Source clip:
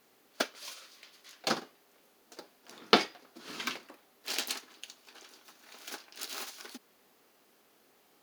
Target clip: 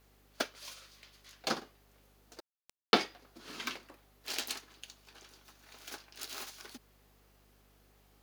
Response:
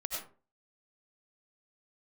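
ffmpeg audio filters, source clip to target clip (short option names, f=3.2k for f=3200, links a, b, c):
-filter_complex "[0:a]aeval=exprs='val(0)+0.000708*(sin(2*PI*50*n/s)+sin(2*PI*2*50*n/s)/2+sin(2*PI*3*50*n/s)/3+sin(2*PI*4*50*n/s)/4+sin(2*PI*5*50*n/s)/5)':c=same,asettb=1/sr,asplit=3[a][b][c];[a]atrim=end=2.404[d];[b]atrim=start=2.4:end=2.96,asetpts=PTS-STARTPTS,afade=t=in:d=0.004:c=qsin,afade=t=out:st=0.556:d=0.004:c=qsin,aeval=exprs='val(0)*gte(abs(val(0)),0.0119)':c=same[e];[c]atrim=start=2.956[f];[d][e]acrossfade=d=0.004:c1=hsin:c2=qsin[g];[g][f]acrossfade=d=0.004:c1=qsin:c2=hsin,volume=-3dB"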